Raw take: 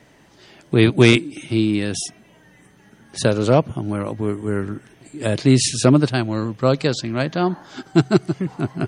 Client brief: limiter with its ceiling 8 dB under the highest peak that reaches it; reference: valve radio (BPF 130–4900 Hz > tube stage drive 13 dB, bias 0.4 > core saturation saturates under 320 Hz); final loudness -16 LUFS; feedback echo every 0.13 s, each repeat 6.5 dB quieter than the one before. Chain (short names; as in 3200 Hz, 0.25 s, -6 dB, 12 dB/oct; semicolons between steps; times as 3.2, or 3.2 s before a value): limiter -9 dBFS; BPF 130–4900 Hz; feedback echo 0.13 s, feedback 47%, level -6.5 dB; tube stage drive 13 dB, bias 0.4; core saturation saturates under 320 Hz; gain +10 dB